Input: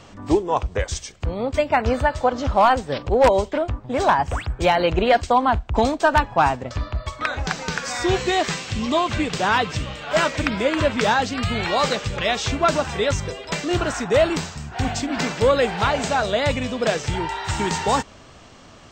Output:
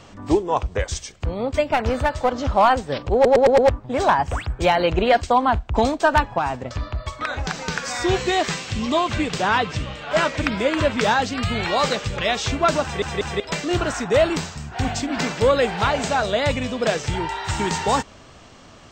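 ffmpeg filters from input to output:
-filter_complex "[0:a]asettb=1/sr,asplit=3[s0][s1][s2];[s0]atrim=end=1.694[s3];[s1]atrim=start=1.69:end=2.32,asetpts=PTS-STARTPTS,afade=t=in:d=0.004:c=qsin,afade=t=out:st=0.626:d=0.004:c=qsin,aeval=exprs='clip(val(0),-1,0.133)':c=same[s4];[s2]atrim=start=2.316[s5];[s3][s4]acrossfade=d=0.004:c1=hsin:c2=qsin[s6];[s6][s5]acrossfade=d=0.004:c1=qsin:c2=hsin,asettb=1/sr,asplit=3[s7][s8][s9];[s7]atrim=end=6.384[s10];[s8]atrim=start=6.38:end=7.6,asetpts=PTS-STARTPTS,afade=t=in:d=0.004:c=qsin,afade=t=out:st=1.216:d=0.004:c=qsin,acompressor=threshold=0.1:ratio=3:attack=3.2:release=140:knee=1:detection=peak[s11];[s9]atrim=start=7.596[s12];[s10][s11]acrossfade=d=0.004:c1=hsin:c2=qsin[s13];[s13][s12]acrossfade=d=0.004:c1=qsin:c2=hsin,asettb=1/sr,asplit=3[s14][s15][s16];[s14]atrim=end=9.424[s17];[s15]atrim=start=9.42:end=10.43,asetpts=PTS-STARTPTS,afade=t=in:d=0.004:c=qsin,afade=t=out:st=1.006:d=0.004:c=qsin,highshelf=f=6400:g=-6.5[s18];[s16]atrim=start=10.426[s19];[s17][s18]acrossfade=d=0.004:c1=hsin:c2=qsin[s20];[s20][s19]acrossfade=d=0.004:c1=qsin:c2=hsin,asplit=9[s21][s22][s23][s24][s25][s26][s27][s28][s29];[s21]atrim=end=3.252[s30];[s22]atrim=start=3.138:end=3.252[s31];[s23]atrim=start=3.138:end=3.252[s32];[s24]atrim=start=3.138:end=3.252[s33];[s25]atrim=start=3.138:end=3.252[s34];[s26]atrim=start=3.688:end=13.022[s35];[s27]atrim=start=12.828:end=13.022[s36];[s28]atrim=start=12.828:end=13.022[s37];[s29]atrim=start=13.398[s38];[s30][s31]acrossfade=d=0.004:c1=hsin:c2=hsin[s39];[s39][s32]acrossfade=d=0.004:c1=hsin:c2=hsin[s40];[s40][s33]acrossfade=d=0.004:c1=hsin:c2=hsin[s41];[s41][s34]acrossfade=d=0.004:c1=hsin:c2=hsin[s42];[s42][s35]acrossfade=d=0.004:c1=hsin:c2=hsin[s43];[s43][s36]acrossfade=d=0.004:c1=hsin:c2=hsin[s44];[s44][s37]acrossfade=d=0.004:c1=hsin:c2=hsin[s45];[s45][s38]acrossfade=d=0.004:c1=hsin:c2=hsin"

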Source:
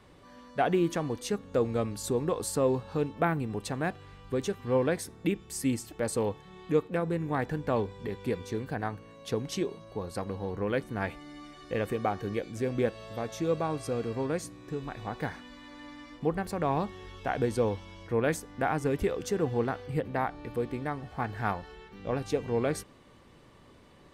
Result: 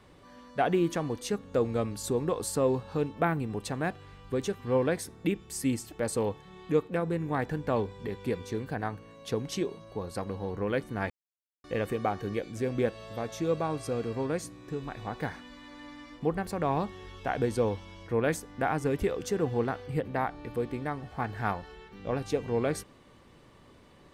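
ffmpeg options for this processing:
-filter_complex "[0:a]asplit=3[s0][s1][s2];[s0]atrim=end=11.1,asetpts=PTS-STARTPTS,afade=t=out:st=11.096:d=0.004:c=hsin[s3];[s1]atrim=start=11.1:end=11.64,asetpts=PTS-STARTPTS,volume=0[s4];[s2]atrim=start=11.64,asetpts=PTS-STARTPTS,afade=t=in:d=0.004:c=hsin[s5];[s3][s4][s5]concat=n=3:v=0:a=1"

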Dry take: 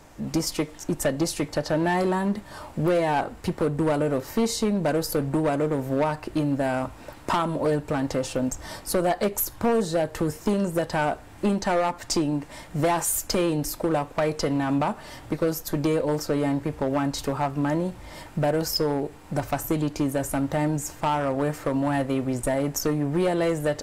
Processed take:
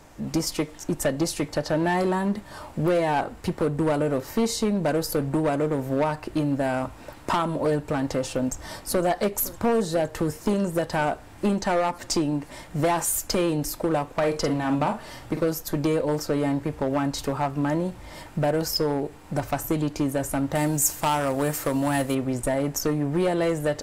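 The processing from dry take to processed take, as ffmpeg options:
-filter_complex "[0:a]asplit=2[s0][s1];[s1]afade=t=in:st=8.4:d=0.01,afade=t=out:st=9.04:d=0.01,aecho=0:1:510|1020|1530|2040|2550|3060|3570|4080|4590|5100|5610|6120:0.125893|0.100714|0.0805712|0.064457|0.0515656|0.0412525|0.033002|0.0264016|0.0211213|0.016897|0.0135176|0.0108141[s2];[s0][s2]amix=inputs=2:normalize=0,asplit=3[s3][s4][s5];[s3]afade=t=out:st=14.22:d=0.02[s6];[s4]asplit=2[s7][s8];[s8]adelay=48,volume=0.422[s9];[s7][s9]amix=inputs=2:normalize=0,afade=t=in:st=14.22:d=0.02,afade=t=out:st=15.4:d=0.02[s10];[s5]afade=t=in:st=15.4:d=0.02[s11];[s6][s10][s11]amix=inputs=3:normalize=0,asettb=1/sr,asplit=3[s12][s13][s14];[s12]atrim=end=20.554[s15];[s13]atrim=start=20.55:end=22.15,asetpts=PTS-STARTPTS,afade=t=in:d=0.004:c=qsin,afade=t=out:st=1.596:d=0.004:c=qsin,aemphasis=mode=production:type=75kf[s16];[s14]atrim=start=22.146[s17];[s15][s16]acrossfade=d=0.004:c1=hsin:c2=qsin[s18];[s18][s17]acrossfade=d=0.004:c1=qsin:c2=hsin"

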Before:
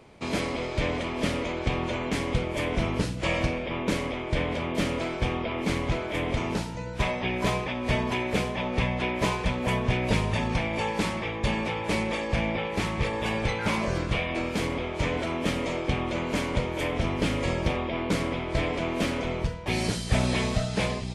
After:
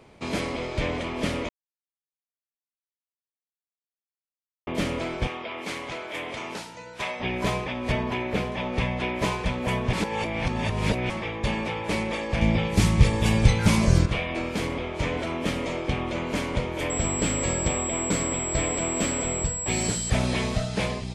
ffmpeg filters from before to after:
-filter_complex "[0:a]asettb=1/sr,asplit=3[s0][s1][s2];[s0]atrim=end=5.274[s3];[s1]atrim=start=5.27:end=7.2,asetpts=PTS-STARTPTS,afade=t=in:d=0.004:c=qsin,afade=t=out:st=1.926:d=0.004:c=qsin,highpass=f=750:p=1[s4];[s2]atrim=start=7.196[s5];[s3][s4]acrossfade=d=0.004:c1=hsin:c2=qsin[s6];[s6][s5]acrossfade=d=0.004:c1=qsin:c2=hsin,asettb=1/sr,asplit=3[s7][s8][s9];[s7]atrim=end=7.924[s10];[s8]atrim=start=7.92:end=8.52,asetpts=PTS-STARTPTS,afade=t=in:d=0.004:c=qsin,afade=t=out:st=0.596:d=0.004:c=qsin,equalizer=f=9000:w=0.59:g=-9[s11];[s9]atrim=start=8.516[s12];[s10][s11]acrossfade=d=0.004:c1=hsin:c2=qsin[s13];[s13][s12]acrossfade=d=0.004:c1=qsin:c2=hsin,asettb=1/sr,asplit=3[s14][s15][s16];[s14]atrim=end=12.414[s17];[s15]atrim=start=12.41:end=14.06,asetpts=PTS-STARTPTS,afade=t=in:d=0.004:c=qsin,afade=t=out:st=1.646:d=0.004:c=qsin,bass=f=250:g=13,treble=f=4000:g=12[s18];[s16]atrim=start=14.056[s19];[s17][s18]acrossfade=d=0.004:c1=hsin:c2=qsin[s20];[s20][s19]acrossfade=d=0.004:c1=qsin:c2=hsin,asettb=1/sr,asplit=3[s21][s22][s23];[s21]atrim=end=16.904[s24];[s22]atrim=start=16.9:end=20.1,asetpts=PTS-STARTPTS,afade=t=in:d=0.004:c=qsin,afade=t=out:st=3.196:d=0.004:c=qsin,aeval=exprs='val(0)+0.0355*sin(2*PI*7700*n/s)':c=same[s25];[s23]atrim=start=20.096[s26];[s24][s25]acrossfade=d=0.004:c1=hsin:c2=qsin[s27];[s27][s26]acrossfade=d=0.004:c1=qsin:c2=hsin,asplit=5[s28][s29][s30][s31][s32];[s28]atrim=end=1.49,asetpts=PTS-STARTPTS,afade=t=out:st=1.486:d=0.004:c=hsin[s33];[s29]atrim=start=1.49:end=4.67,asetpts=PTS-STARTPTS,volume=0[s34];[s30]atrim=start=4.67:end=9.932,asetpts=PTS-STARTPTS,afade=t=in:d=0.004:c=hsin[s35];[s31]atrim=start=9.928:end=11.102,asetpts=PTS-STARTPTS,areverse[s36];[s32]atrim=start=11.098[s37];[s33][s34][s35]concat=n=3:v=0:a=1[s38];[s38][s36]acrossfade=d=0.004:c1=hsin:c2=hsin[s39];[s39][s37]acrossfade=d=0.004:c1=hsin:c2=hsin"

